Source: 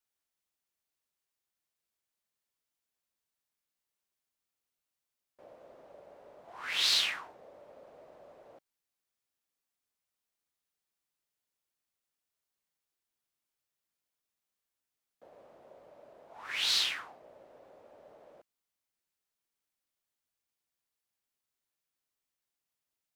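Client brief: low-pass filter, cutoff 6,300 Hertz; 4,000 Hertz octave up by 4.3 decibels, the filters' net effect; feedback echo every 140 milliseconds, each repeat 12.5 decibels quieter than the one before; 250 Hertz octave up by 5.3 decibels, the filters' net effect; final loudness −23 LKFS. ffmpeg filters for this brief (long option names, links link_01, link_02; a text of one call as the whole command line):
ffmpeg -i in.wav -af "lowpass=6300,equalizer=frequency=250:width_type=o:gain=7,equalizer=frequency=4000:width_type=o:gain=5.5,aecho=1:1:140|280|420:0.237|0.0569|0.0137,volume=2dB" out.wav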